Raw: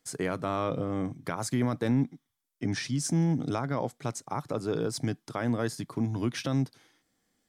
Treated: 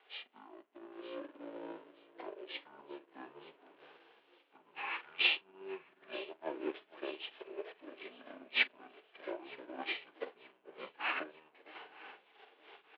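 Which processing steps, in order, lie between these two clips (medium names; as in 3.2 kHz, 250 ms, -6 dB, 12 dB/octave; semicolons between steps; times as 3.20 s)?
jump at every zero crossing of -37.5 dBFS; elliptic band-pass 840–6800 Hz, stop band 60 dB; peak limiter -26 dBFS, peak gain reduction 6 dB; formant shift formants -4 st; rotary cabinet horn 0.8 Hz, later 5.5 Hz, at 2.61 s; doubling 24 ms -9 dB; echo whose repeats swap between lows and highs 266 ms, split 1.4 kHz, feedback 80%, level -8.5 dB; speed mistake 78 rpm record played at 45 rpm; upward expansion 2.5:1, over -56 dBFS; trim +9.5 dB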